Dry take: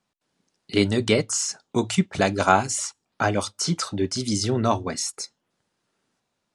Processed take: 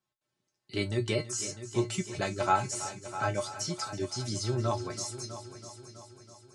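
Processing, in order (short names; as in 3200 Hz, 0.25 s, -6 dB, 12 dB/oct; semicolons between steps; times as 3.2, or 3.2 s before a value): resonator 120 Hz, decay 0.15 s, harmonics odd, mix 90%; on a send: multi-head echo 0.326 s, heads first and second, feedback 53%, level -15 dB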